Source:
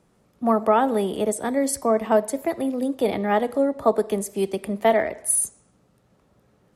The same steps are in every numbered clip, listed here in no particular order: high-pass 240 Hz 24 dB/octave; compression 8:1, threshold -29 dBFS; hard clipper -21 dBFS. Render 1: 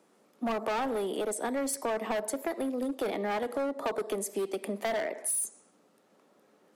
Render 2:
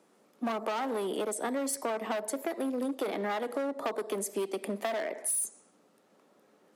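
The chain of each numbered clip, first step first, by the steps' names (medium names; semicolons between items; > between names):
high-pass > hard clipper > compression; hard clipper > high-pass > compression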